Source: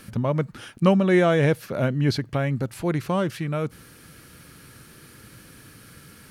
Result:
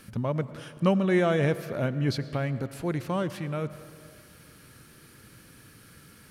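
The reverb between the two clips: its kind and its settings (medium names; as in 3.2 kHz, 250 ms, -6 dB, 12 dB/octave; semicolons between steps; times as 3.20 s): algorithmic reverb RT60 2.3 s, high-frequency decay 0.6×, pre-delay 60 ms, DRR 14 dB; trim -5 dB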